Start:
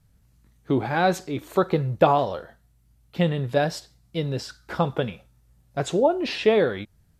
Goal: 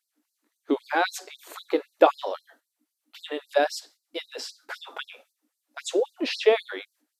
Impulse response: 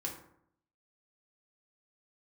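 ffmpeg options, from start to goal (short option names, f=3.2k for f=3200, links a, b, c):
-af "agate=range=-6dB:threshold=-53dB:ratio=16:detection=peak,aeval=exprs='val(0)+0.00178*(sin(2*PI*60*n/s)+sin(2*PI*2*60*n/s)/2+sin(2*PI*3*60*n/s)/3+sin(2*PI*4*60*n/s)/4+sin(2*PI*5*60*n/s)/5)':c=same,afftfilt=real='re*gte(b*sr/1024,240*pow(4100/240,0.5+0.5*sin(2*PI*3.8*pts/sr)))':imag='im*gte(b*sr/1024,240*pow(4100/240,0.5+0.5*sin(2*PI*3.8*pts/sr)))':win_size=1024:overlap=0.75,volume=1dB"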